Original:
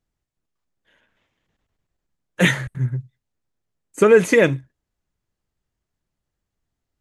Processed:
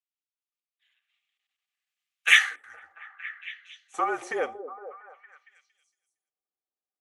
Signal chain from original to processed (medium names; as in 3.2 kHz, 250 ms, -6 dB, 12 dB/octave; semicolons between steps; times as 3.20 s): Doppler pass-by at 2.16 s, 22 m/s, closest 7.4 m; frequency shift -40 Hz; small resonant body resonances 770/1200 Hz, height 14 dB, ringing for 40 ms; high-pass sweep 2.6 kHz -> 390 Hz, 2.15–4.96 s; repeats whose band climbs or falls 230 ms, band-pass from 360 Hz, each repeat 0.7 oct, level -9 dB